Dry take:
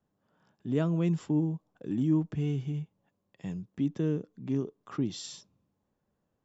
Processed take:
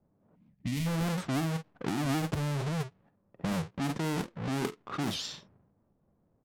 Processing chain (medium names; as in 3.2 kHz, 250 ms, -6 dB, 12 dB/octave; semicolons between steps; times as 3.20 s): square wave that keeps the level; doubling 49 ms -12 dB; in parallel at +2 dB: compressor with a negative ratio -32 dBFS, ratio -0.5; on the sum: level-controlled noise filter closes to 850 Hz, open at -19.5 dBFS; time-frequency box 0.35–0.87 s, 290–1800 Hz -17 dB; warped record 78 rpm, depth 250 cents; trim -8 dB